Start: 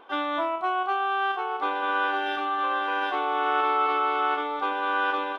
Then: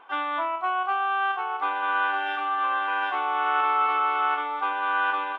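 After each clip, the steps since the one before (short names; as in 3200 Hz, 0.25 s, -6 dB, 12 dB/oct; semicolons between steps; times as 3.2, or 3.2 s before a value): band shelf 1500 Hz +9.5 dB 2.3 oct; gain -8 dB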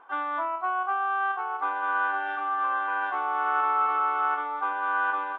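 resonant high shelf 2000 Hz -7 dB, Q 1.5; gain -3 dB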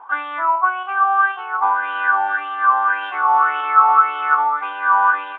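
LFO bell 1.8 Hz 870–3100 Hz +18 dB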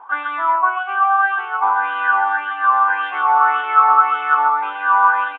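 echo 0.134 s -6 dB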